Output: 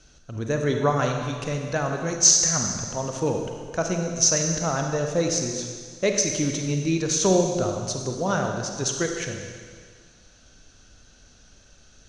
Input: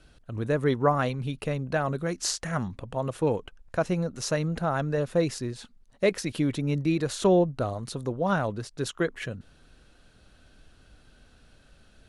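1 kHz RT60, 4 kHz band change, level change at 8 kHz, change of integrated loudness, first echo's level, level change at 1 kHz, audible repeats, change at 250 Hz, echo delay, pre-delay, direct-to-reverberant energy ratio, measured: 1.9 s, +9.0 dB, +17.5 dB, +5.0 dB, no echo audible, +1.5 dB, no echo audible, +1.5 dB, no echo audible, 33 ms, 3.0 dB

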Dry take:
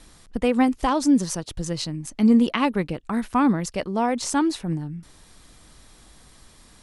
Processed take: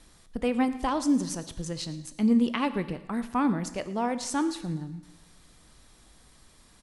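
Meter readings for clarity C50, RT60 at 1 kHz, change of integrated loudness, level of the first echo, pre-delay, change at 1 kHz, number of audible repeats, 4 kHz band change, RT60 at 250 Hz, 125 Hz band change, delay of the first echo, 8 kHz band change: 13.0 dB, 1.1 s, −6.0 dB, −19.0 dB, 17 ms, −6.0 dB, 1, −5.5 dB, 1.1 s, −5.5 dB, 112 ms, −5.5 dB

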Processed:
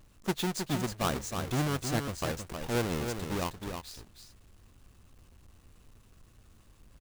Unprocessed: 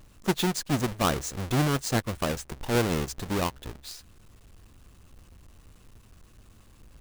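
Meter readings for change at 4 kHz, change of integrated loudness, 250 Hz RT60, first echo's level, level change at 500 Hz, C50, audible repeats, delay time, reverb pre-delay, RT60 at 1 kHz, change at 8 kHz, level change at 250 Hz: −4.5 dB, −5.0 dB, no reverb audible, −6.5 dB, −4.5 dB, no reverb audible, 1, 315 ms, no reverb audible, no reverb audible, −4.5 dB, −5.0 dB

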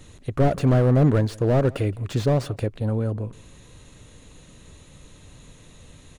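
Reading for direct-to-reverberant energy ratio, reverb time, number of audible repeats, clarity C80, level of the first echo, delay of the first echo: no reverb audible, no reverb audible, 1, no reverb audible, −23.5 dB, 169 ms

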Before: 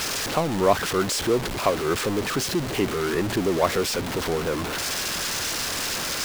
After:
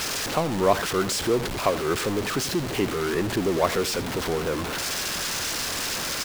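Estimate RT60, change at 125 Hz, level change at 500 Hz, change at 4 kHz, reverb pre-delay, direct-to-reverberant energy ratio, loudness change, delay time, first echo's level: no reverb audible, −1.0 dB, −1.0 dB, −1.0 dB, no reverb audible, no reverb audible, −1.0 dB, 87 ms, −15.5 dB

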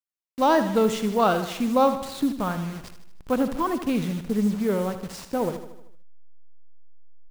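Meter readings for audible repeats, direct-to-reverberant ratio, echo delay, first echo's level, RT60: 5, no reverb audible, 77 ms, −11.0 dB, no reverb audible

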